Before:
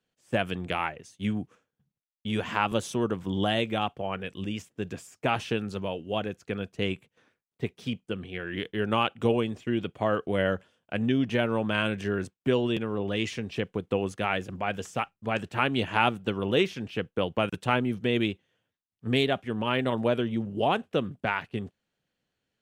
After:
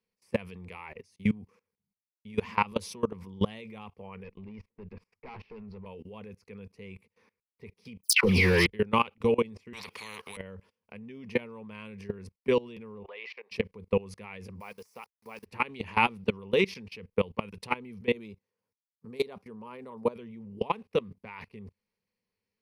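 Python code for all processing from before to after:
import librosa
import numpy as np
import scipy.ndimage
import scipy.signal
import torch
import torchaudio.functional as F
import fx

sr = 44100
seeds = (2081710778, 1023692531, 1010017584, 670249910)

y = fx.chain(x, sr, fx.tube_stage(drive_db=32.0, bias=0.55),
    fx.air_absorb(metres=350.0), at=(4.24, 5.86))
y = fx.chain(y, sr, fx.leveller(passes=3),
    fx.dispersion(late='lows', ms=143.0, hz=1900.0),
    fx.env_flatten(amount_pct=100), at=(8.03, 8.67))
y = fx.chain(y, sr, fx.highpass(hz=510.0, slope=12),
    fx.spectral_comp(ratio=10.0), at=(9.73, 10.37))
y = fx.chain(y, sr, fx.highpass(hz=590.0, slope=24),
    fx.air_absorb(metres=370.0), at=(13.03, 13.51))
y = fx.chain(y, sr, fx.delta_hold(step_db=-47.0),
    fx.highpass(hz=1000.0, slope=6),
    fx.peak_eq(hz=2400.0, db=-7.5, octaves=1.9), at=(14.6, 15.46))
y = fx.chain(y, sr, fx.highpass(hz=160.0, slope=6),
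    fx.band_shelf(hz=2500.0, db=-8.5, octaves=1.2), at=(18.13, 20.16))
y = fx.ripple_eq(y, sr, per_octave=0.87, db=12)
y = fx.level_steps(y, sr, step_db=22)
y = fx.dynamic_eq(y, sr, hz=3900.0, q=1.2, threshold_db=-53.0, ratio=4.0, max_db=4)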